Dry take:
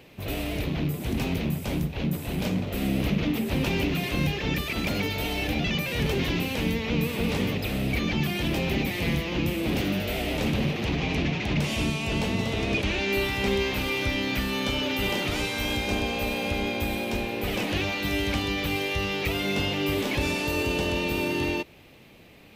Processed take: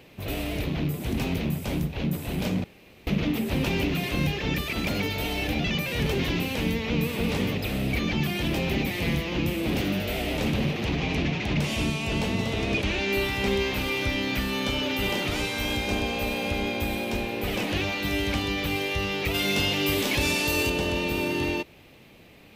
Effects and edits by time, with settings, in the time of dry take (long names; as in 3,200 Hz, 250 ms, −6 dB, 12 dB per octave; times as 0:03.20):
0:02.64–0:03.07: fill with room tone
0:19.34–0:20.70: high-shelf EQ 2,900 Hz +8.5 dB